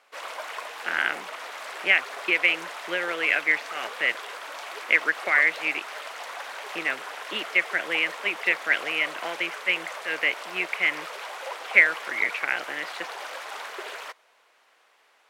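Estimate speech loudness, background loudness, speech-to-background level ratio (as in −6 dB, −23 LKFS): −24.5 LKFS, −36.0 LKFS, 11.5 dB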